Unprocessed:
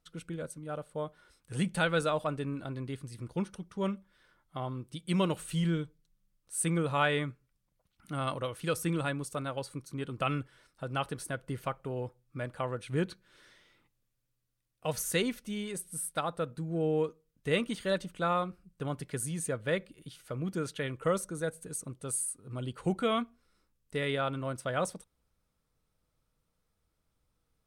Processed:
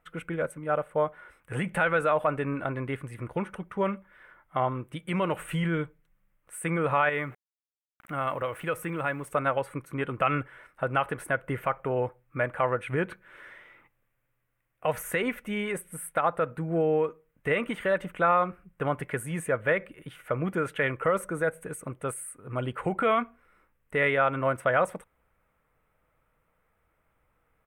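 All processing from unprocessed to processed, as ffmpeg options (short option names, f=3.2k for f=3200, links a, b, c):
-filter_complex "[0:a]asettb=1/sr,asplit=3[a][b][c];[a]atrim=end=7.094[d];[b]atrim=start=7.09:end=9.29,asetpts=PTS-STARTPTS,afade=t=in:d=0.004:c=qsin,afade=t=out:st=2.196:d=0.004:c=qsin,acompressor=threshold=-41dB:ratio=2:attack=3.2:release=140:knee=1:detection=peak,aeval=exprs='val(0)*gte(abs(val(0)),0.0015)':c=same[e];[c]atrim=start=9.286[f];[d][e]acrossfade=d=0.004:c1=hsin:c2=qsin[g];[g][f]acrossfade=d=0.004:c1=qsin:c2=hsin,equalizer=f=8.1k:w=4.5:g=3.5,alimiter=level_in=2dB:limit=-24dB:level=0:latency=1:release=106,volume=-2dB,firequalizer=gain_entry='entry(230,0);entry(570,8);entry(2100,11);entry(4400,-17);entry(13000,0)':delay=0.05:min_phase=1,volume=4dB"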